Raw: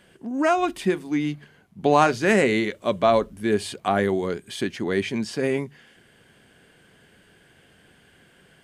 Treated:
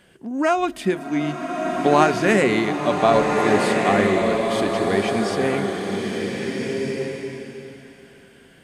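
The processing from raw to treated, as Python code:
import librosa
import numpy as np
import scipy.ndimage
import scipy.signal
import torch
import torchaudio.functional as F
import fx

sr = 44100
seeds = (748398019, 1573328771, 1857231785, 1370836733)

y = fx.rev_bloom(x, sr, seeds[0], attack_ms=1570, drr_db=0.5)
y = y * librosa.db_to_amplitude(1.0)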